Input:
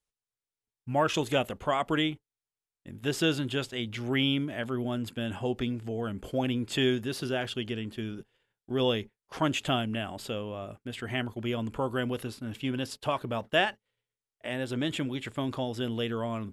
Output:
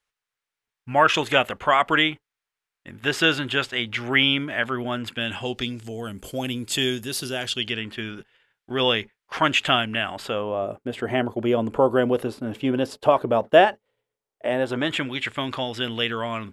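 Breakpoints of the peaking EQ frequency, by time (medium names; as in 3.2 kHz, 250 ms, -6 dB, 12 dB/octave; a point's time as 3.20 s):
peaking EQ +14 dB 2.7 oct
5.03 s 1.7 kHz
6.09 s 11 kHz
7.35 s 11 kHz
7.80 s 1.9 kHz
10.10 s 1.9 kHz
10.64 s 550 Hz
14.47 s 550 Hz
15.15 s 2.2 kHz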